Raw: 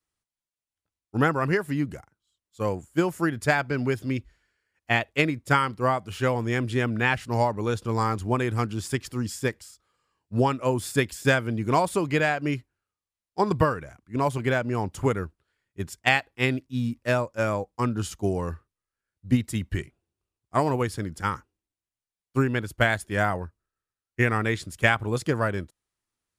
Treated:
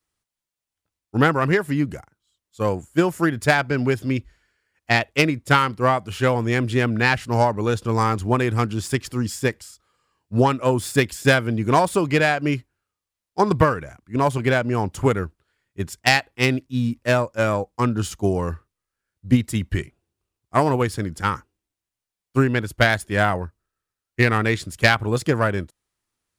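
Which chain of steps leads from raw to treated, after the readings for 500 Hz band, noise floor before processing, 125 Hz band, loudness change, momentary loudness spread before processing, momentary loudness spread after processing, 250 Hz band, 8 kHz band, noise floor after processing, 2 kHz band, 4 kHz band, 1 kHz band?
+5.0 dB, under -85 dBFS, +5.0 dB, +5.0 dB, 10 LU, 9 LU, +5.0 dB, +5.0 dB, under -85 dBFS, +4.5 dB, +6.5 dB, +5.0 dB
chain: self-modulated delay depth 0.074 ms; trim +5 dB

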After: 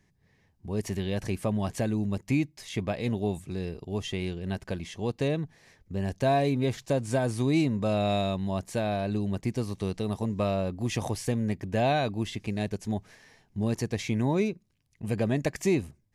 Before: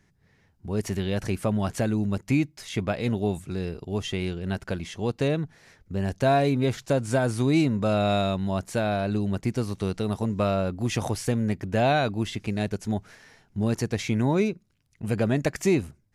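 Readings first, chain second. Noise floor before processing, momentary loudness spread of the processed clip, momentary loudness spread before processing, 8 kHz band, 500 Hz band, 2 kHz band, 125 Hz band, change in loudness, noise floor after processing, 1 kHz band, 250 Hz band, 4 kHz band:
-65 dBFS, 9 LU, 9 LU, -3.0 dB, -3.0 dB, -4.5 dB, -3.0 dB, -3.0 dB, -68 dBFS, -3.5 dB, -3.0 dB, -3.0 dB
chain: band-stop 1.4 kHz, Q 5.3; trim -3 dB

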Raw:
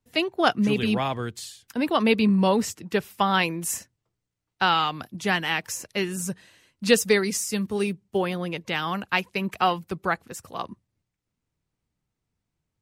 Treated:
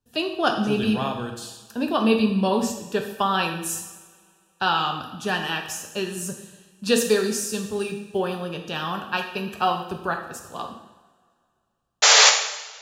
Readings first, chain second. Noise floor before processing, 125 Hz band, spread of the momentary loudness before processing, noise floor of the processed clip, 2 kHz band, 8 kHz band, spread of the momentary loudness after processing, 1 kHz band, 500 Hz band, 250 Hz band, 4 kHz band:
-83 dBFS, -1.5 dB, 12 LU, -69 dBFS, +2.0 dB, +8.5 dB, 14 LU, +1.0 dB, +1.0 dB, 0.0 dB, +6.5 dB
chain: Butterworth band-stop 2.1 kHz, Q 3.4; painted sound noise, 12.02–12.30 s, 420–7400 Hz -13 dBFS; two-slope reverb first 0.88 s, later 2.5 s, from -19 dB, DRR 3 dB; trim -1.5 dB

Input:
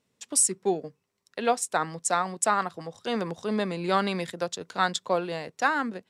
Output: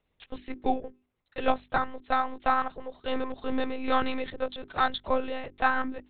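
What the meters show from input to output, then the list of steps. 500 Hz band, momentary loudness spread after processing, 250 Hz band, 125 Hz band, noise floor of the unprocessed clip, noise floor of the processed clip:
-3.0 dB, 11 LU, -2.0 dB, -9.5 dB, -77 dBFS, -77 dBFS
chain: high-pass 98 Hz 24 dB/octave; monotone LPC vocoder at 8 kHz 260 Hz; hum notches 50/100/150/200/250/300/350/400 Hz

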